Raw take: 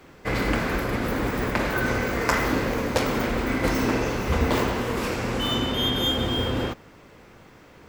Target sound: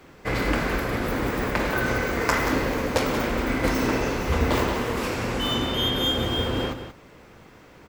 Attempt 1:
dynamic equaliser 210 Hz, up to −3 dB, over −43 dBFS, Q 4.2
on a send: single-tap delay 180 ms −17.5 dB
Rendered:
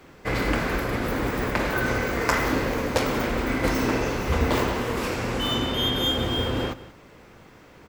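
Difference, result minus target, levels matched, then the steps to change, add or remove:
echo-to-direct −7.5 dB
change: single-tap delay 180 ms −10 dB

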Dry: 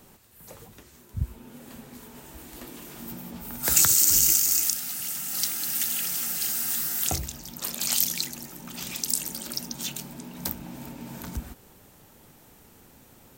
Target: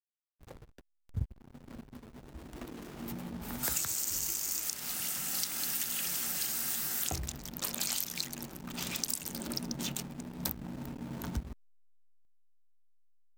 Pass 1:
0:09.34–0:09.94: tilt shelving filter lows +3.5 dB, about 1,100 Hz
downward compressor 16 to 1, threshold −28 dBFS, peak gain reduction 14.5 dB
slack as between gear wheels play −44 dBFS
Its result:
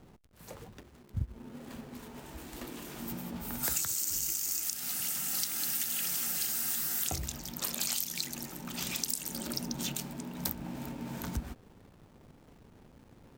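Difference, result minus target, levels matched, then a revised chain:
slack as between gear wheels: distortion −9 dB
0:09.34–0:09.94: tilt shelving filter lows +3.5 dB, about 1,100 Hz
downward compressor 16 to 1, threshold −28 dBFS, peak gain reduction 14.5 dB
slack as between gear wheels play −34.5 dBFS

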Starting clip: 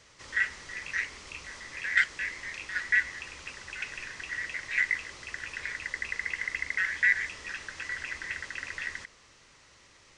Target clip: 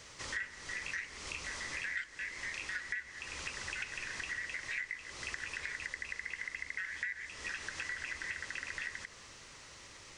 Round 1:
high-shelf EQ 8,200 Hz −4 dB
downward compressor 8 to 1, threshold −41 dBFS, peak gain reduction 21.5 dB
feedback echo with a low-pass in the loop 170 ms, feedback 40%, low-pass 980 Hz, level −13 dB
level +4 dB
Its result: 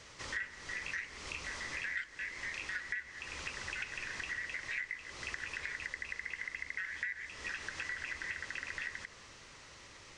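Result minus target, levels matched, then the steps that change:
8,000 Hz band −3.0 dB
change: high-shelf EQ 8,200 Hz +6 dB

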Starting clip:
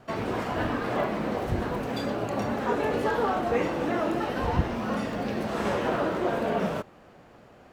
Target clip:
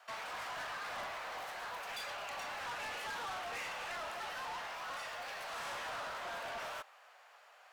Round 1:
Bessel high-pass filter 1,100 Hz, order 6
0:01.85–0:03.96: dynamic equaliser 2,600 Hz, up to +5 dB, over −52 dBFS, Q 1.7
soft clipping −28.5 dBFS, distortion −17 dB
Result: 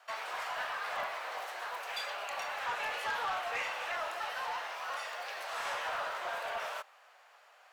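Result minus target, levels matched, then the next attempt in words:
soft clipping: distortion −10 dB
Bessel high-pass filter 1,100 Hz, order 6
0:01.85–0:03.96: dynamic equaliser 2,600 Hz, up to +5 dB, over −52 dBFS, Q 1.7
soft clipping −39.5 dBFS, distortion −7 dB

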